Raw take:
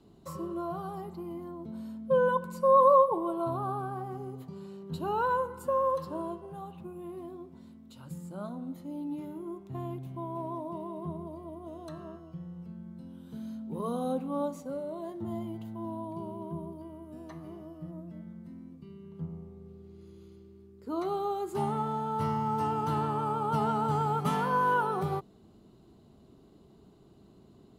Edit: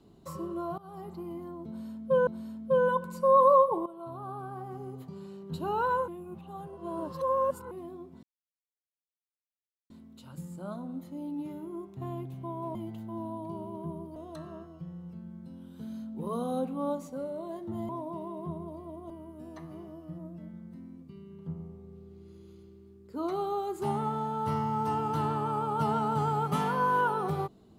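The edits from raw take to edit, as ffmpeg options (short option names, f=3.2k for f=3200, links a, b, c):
-filter_complex "[0:a]asplit=11[a][b][c][d][e][f][g][h][i][j][k];[a]atrim=end=0.78,asetpts=PTS-STARTPTS,afade=t=out:st=0.776:d=0.004:c=hsin:silence=0.0944061[l];[b]atrim=start=0.78:end=2.272,asetpts=PTS-STARTPTS,afade=t=in:d=0.33:silence=0.0944061[m];[c]atrim=start=1.668:end=3.26,asetpts=PTS-STARTPTS,afade=t=out:st=1.588:d=0.004:c=hsin:silence=0.16788[n];[d]atrim=start=3.26:end=5.482,asetpts=PTS-STARTPTS,afade=t=in:d=1.15:silence=0.16788[o];[e]atrim=start=5.478:end=7.112,asetpts=PTS-STARTPTS,areverse[p];[f]atrim=start=7.108:end=7.63,asetpts=PTS-STARTPTS,afade=t=out:st=0.518:d=0.004:c=hsin,apad=pad_dur=1.67[q];[g]atrim=start=7.63:end=10.482,asetpts=PTS-STARTPTS,afade=t=in:d=0.004:c=hsin[r];[h]atrim=start=15.418:end=16.832[s];[i]atrim=start=11.688:end=15.422[t];[j]atrim=start=10.478:end=11.692[u];[k]atrim=start=16.828[v];[l][m]concat=n=2:v=0:a=1[w];[n][o]concat=n=2:v=0:a=1[x];[w][x]acrossfade=d=0.004:c1=hsin:c2=hsin[y];[y][p]acrossfade=d=0.004:c1=hsin:c2=hsin[z];[q][r]concat=n=2:v=0:a=1[aa];[z][aa]acrossfade=d=0.004:c1=hsin:c2=hsin[ab];[ab][s]acrossfade=d=0.004:c1=hsin:c2=hsin[ac];[ac][t]acrossfade=d=0.004:c1=hsin:c2=hsin[ad];[ad][u]acrossfade=d=0.004:c1=hsin:c2=hsin[ae];[ae][v]acrossfade=d=0.004:c1=hsin:c2=hsin"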